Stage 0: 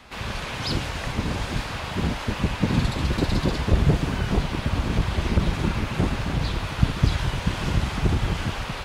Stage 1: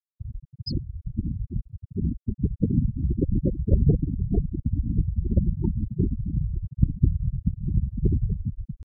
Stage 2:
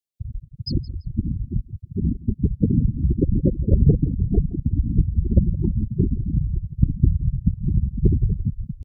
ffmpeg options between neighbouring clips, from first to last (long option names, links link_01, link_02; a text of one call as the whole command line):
ffmpeg -i in.wav -af "afftfilt=real='re*gte(hypot(re,im),0.224)':imag='im*gte(hypot(re,im),0.224)':win_size=1024:overlap=0.75,highshelf=frequency=5700:gain=11.5,areverse,acompressor=mode=upward:threshold=-40dB:ratio=2.5,areverse" out.wav
ffmpeg -i in.wav -af "tremolo=f=5.2:d=0.29,asuperstop=centerf=1300:order=4:qfactor=0.71,aecho=1:1:168|336:0.112|0.0281,volume=5.5dB" out.wav